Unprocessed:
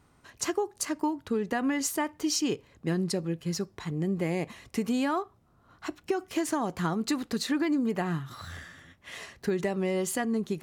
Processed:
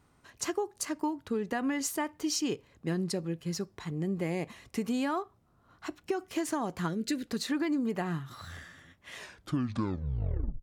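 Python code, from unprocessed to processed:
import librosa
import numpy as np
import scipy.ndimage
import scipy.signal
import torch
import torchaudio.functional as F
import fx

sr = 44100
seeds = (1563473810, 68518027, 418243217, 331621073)

y = fx.tape_stop_end(x, sr, length_s=1.49)
y = fx.spec_box(y, sr, start_s=6.88, length_s=0.39, low_hz=650.0, high_hz=1400.0, gain_db=-18)
y = y * librosa.db_to_amplitude(-3.0)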